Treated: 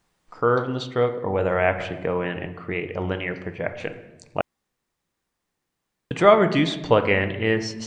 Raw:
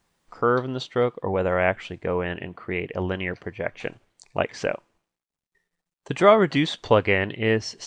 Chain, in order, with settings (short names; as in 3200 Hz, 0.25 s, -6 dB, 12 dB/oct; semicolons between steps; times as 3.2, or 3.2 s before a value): reverb RT60 1.0 s, pre-delay 6 ms, DRR 7.5 dB; 1.8–2.46 three-band squash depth 40%; 4.41–6.11 room tone